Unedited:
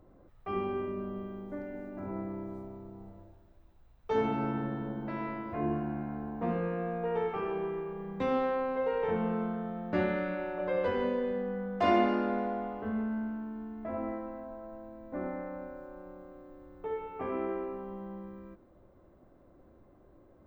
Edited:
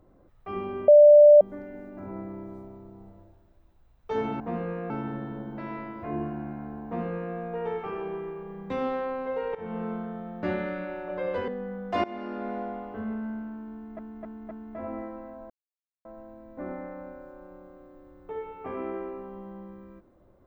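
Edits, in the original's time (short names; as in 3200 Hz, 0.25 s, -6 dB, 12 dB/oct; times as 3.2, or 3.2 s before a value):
0.88–1.41 bleep 591 Hz -9.5 dBFS
6.35–6.85 copy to 4.4
9.05–9.45 fade in equal-power, from -15.5 dB
10.98–11.36 cut
11.92–12.48 fade in, from -20 dB
13.61–13.87 loop, 4 plays
14.6 insert silence 0.55 s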